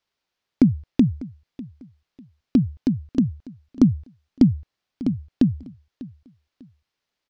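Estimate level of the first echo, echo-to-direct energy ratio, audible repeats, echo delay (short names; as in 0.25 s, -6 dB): -19.0 dB, -18.5 dB, 2, 0.597 s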